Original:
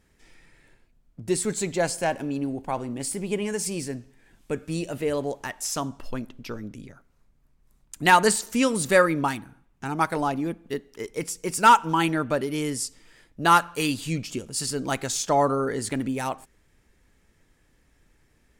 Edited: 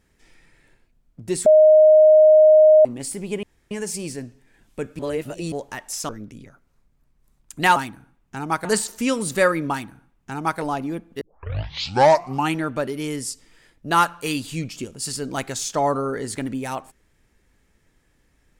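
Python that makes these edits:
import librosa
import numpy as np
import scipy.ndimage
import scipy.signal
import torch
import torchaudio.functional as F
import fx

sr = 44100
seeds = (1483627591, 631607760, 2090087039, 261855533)

y = fx.edit(x, sr, fx.bleep(start_s=1.46, length_s=1.39, hz=620.0, db=-8.0),
    fx.insert_room_tone(at_s=3.43, length_s=0.28),
    fx.reverse_span(start_s=4.71, length_s=0.53),
    fx.cut(start_s=5.81, length_s=0.71),
    fx.duplicate(start_s=9.25, length_s=0.89, to_s=8.19),
    fx.tape_start(start_s=10.75, length_s=1.34), tone=tone)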